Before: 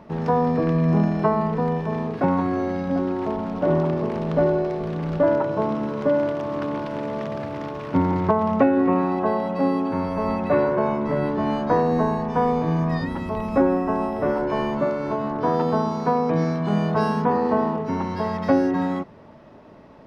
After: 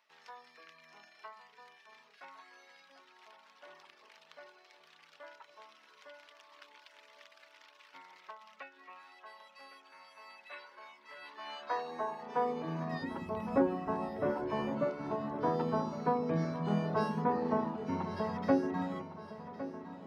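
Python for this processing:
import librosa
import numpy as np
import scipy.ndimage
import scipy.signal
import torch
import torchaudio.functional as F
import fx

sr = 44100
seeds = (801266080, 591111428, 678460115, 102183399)

y = fx.dereverb_blind(x, sr, rt60_s=0.78)
y = fx.filter_sweep_highpass(y, sr, from_hz=2500.0, to_hz=74.0, start_s=10.99, end_s=13.59, q=0.74)
y = fx.dynamic_eq(y, sr, hz=3600.0, q=1.2, threshold_db=-52.0, ratio=4.0, max_db=7, at=(10.41, 11.91))
y = fx.echo_feedback(y, sr, ms=1109, feedback_pct=57, wet_db=-13.5)
y = y * librosa.db_to_amplitude(-9.0)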